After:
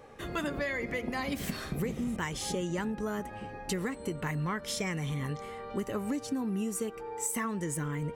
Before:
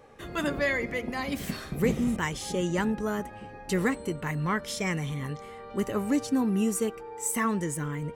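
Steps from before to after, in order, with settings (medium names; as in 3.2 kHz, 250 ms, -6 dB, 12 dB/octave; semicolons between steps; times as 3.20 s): compression 10:1, threshold -31 dBFS, peak gain reduction 12 dB; trim +1.5 dB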